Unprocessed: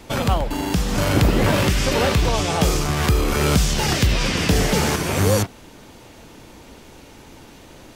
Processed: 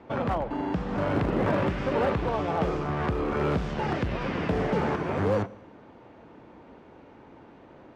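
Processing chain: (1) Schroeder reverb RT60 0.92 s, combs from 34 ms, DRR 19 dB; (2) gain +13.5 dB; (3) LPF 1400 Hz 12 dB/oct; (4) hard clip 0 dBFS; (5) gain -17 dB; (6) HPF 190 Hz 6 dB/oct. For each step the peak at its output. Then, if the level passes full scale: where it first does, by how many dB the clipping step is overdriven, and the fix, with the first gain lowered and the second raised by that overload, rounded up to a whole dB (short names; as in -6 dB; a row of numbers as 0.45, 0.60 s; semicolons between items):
-5.5, +8.0, +7.5, 0.0, -17.0, -14.0 dBFS; step 2, 7.5 dB; step 2 +5.5 dB, step 5 -9 dB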